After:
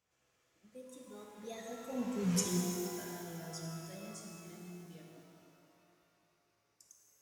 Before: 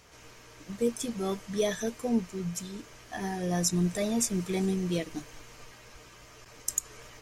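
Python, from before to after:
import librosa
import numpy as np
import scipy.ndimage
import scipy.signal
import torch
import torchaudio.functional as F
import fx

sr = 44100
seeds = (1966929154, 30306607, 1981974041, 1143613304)

y = fx.doppler_pass(x, sr, speed_mps=26, closest_m=1.9, pass_at_s=2.35)
y = scipy.signal.sosfilt(scipy.signal.butter(2, 67.0, 'highpass', fs=sr, output='sos'), y)
y = fx.rev_shimmer(y, sr, seeds[0], rt60_s=2.7, semitones=12, shimmer_db=-8, drr_db=0.0)
y = F.gain(torch.from_numpy(y), 3.5).numpy()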